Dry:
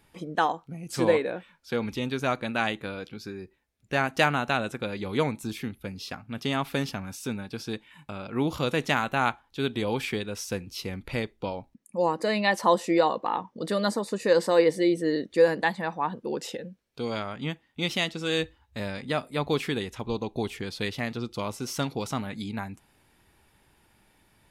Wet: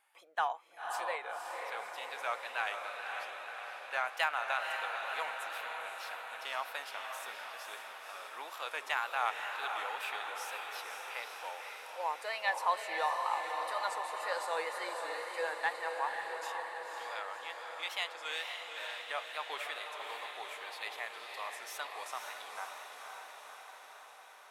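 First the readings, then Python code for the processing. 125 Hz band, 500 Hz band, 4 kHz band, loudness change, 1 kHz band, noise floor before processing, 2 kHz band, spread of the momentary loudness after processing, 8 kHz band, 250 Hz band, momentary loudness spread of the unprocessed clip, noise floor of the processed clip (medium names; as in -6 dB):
under -40 dB, -16.0 dB, -7.5 dB, -9.5 dB, -5.0 dB, -66 dBFS, -5.0 dB, 11 LU, -8.0 dB, -34.5 dB, 13 LU, -53 dBFS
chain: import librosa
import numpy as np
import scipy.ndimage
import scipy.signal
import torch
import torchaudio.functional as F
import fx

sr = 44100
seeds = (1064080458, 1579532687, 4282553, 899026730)

p1 = scipy.signal.sosfilt(scipy.signal.butter(4, 750.0, 'highpass', fs=sr, output='sos'), x)
p2 = fx.peak_eq(p1, sr, hz=5200.0, db=-8.0, octaves=1.2)
p3 = fx.wow_flutter(p2, sr, seeds[0], rate_hz=2.1, depth_cents=82.0)
p4 = 10.0 ** (-23.0 / 20.0) * np.tanh(p3 / 10.0 ** (-23.0 / 20.0))
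p5 = p3 + F.gain(torch.from_numpy(p4), -11.0).numpy()
p6 = fx.echo_diffused(p5, sr, ms=528, feedback_pct=69, wet_db=-4.5)
y = F.gain(torch.from_numpy(p6), -7.5).numpy()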